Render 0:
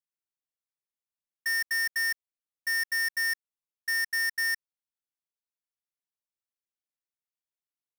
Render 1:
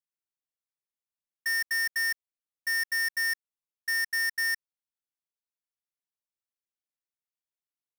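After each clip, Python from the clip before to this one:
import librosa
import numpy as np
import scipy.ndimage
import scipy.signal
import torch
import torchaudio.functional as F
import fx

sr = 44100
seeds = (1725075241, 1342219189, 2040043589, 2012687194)

y = x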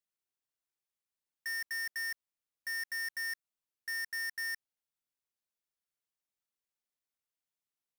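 y = np.clip(x, -10.0 ** (-36.0 / 20.0), 10.0 ** (-36.0 / 20.0))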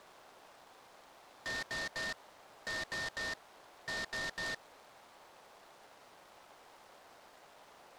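y = fx.delta_mod(x, sr, bps=64000, step_db=-48.0)
y = fx.bandpass_q(y, sr, hz=730.0, q=1.4)
y = fx.noise_mod_delay(y, sr, seeds[0], noise_hz=2300.0, depth_ms=0.059)
y = F.gain(torch.from_numpy(y), 9.0).numpy()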